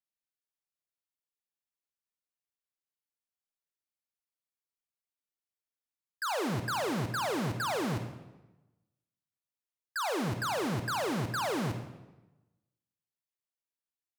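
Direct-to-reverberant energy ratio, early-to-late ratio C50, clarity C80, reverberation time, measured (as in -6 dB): 7.0 dB, 8.0 dB, 10.5 dB, 1.1 s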